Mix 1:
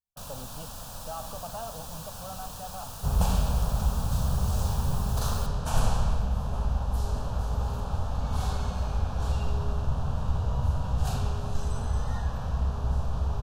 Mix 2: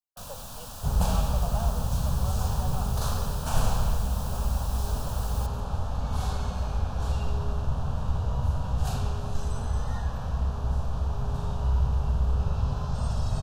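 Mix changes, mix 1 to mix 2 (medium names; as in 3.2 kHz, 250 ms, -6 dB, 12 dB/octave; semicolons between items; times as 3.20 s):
speech: add steep high-pass 410 Hz; second sound: entry -2.20 s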